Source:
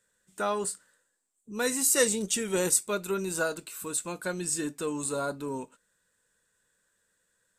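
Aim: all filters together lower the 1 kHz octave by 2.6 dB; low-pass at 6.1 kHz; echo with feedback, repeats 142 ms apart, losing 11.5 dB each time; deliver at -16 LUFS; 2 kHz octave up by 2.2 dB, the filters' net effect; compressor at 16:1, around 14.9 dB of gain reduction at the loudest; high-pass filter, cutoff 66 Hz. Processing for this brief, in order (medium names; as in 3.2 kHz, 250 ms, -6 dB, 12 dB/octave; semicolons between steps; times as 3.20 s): high-pass 66 Hz; low-pass 6.1 kHz; peaking EQ 1 kHz -6 dB; peaking EQ 2 kHz +5.5 dB; compression 16:1, threshold -33 dBFS; feedback delay 142 ms, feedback 27%, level -11.5 dB; trim +21.5 dB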